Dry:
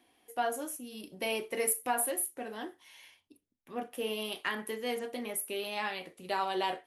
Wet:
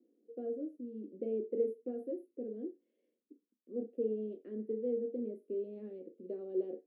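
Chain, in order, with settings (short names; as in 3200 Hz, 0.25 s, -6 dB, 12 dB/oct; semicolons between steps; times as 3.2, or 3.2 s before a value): elliptic band-pass 210–500 Hz, stop band 40 dB; gain +2 dB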